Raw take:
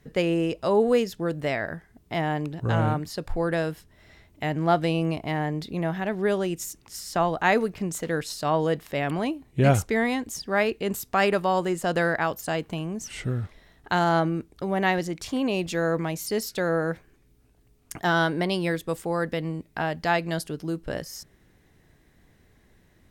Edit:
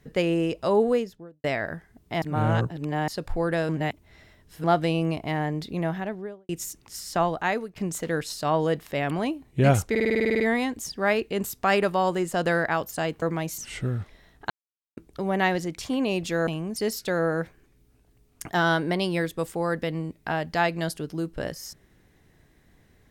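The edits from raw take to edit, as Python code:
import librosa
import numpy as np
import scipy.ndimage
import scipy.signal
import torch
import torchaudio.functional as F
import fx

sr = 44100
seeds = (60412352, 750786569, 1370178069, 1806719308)

y = fx.studio_fade_out(x, sr, start_s=0.73, length_s=0.71)
y = fx.studio_fade_out(y, sr, start_s=5.84, length_s=0.65)
y = fx.edit(y, sr, fx.reverse_span(start_s=2.22, length_s=0.86),
    fx.reverse_span(start_s=3.69, length_s=0.95),
    fx.fade_out_to(start_s=7.23, length_s=0.53, floor_db=-16.0),
    fx.stutter(start_s=9.9, slice_s=0.05, count=11),
    fx.swap(start_s=12.72, length_s=0.29, other_s=15.9, other_length_s=0.36),
    fx.silence(start_s=13.93, length_s=0.47), tone=tone)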